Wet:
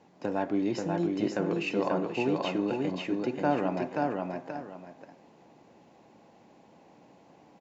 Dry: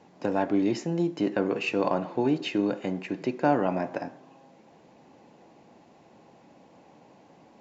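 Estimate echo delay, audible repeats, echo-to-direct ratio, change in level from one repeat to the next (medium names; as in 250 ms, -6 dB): 534 ms, 2, -2.5 dB, -11.0 dB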